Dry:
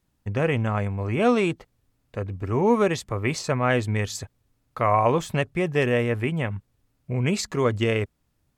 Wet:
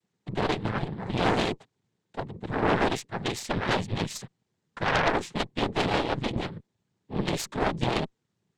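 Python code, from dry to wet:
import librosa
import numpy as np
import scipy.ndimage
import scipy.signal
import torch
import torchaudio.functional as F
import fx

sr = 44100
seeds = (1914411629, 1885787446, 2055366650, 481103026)

y = x * np.sin(2.0 * np.pi * 59.0 * np.arange(len(x)) / sr)
y = fx.noise_vocoder(y, sr, seeds[0], bands=6)
y = fx.cheby_harmonics(y, sr, harmonics=(5, 6), levels_db=(-16, -8), full_scale_db=-8.5)
y = F.gain(torch.from_numpy(y), -6.0).numpy()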